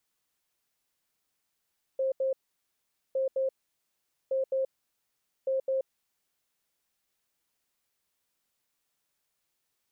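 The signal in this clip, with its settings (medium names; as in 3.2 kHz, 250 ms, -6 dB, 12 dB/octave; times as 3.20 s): beep pattern sine 531 Hz, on 0.13 s, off 0.08 s, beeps 2, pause 0.82 s, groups 4, -25 dBFS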